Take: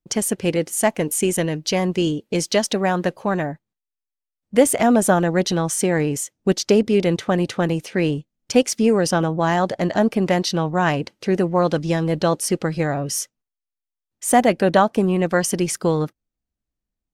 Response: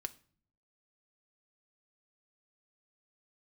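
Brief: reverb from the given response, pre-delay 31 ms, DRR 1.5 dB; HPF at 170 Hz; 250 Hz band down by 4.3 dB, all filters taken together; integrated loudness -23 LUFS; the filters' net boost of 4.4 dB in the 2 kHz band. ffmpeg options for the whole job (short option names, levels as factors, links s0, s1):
-filter_complex "[0:a]highpass=170,equalizer=f=250:t=o:g=-4.5,equalizer=f=2000:t=o:g=5.5,asplit=2[s0][s1];[1:a]atrim=start_sample=2205,adelay=31[s2];[s1][s2]afir=irnorm=-1:irlink=0,volume=1.06[s3];[s0][s3]amix=inputs=2:normalize=0,volume=0.596"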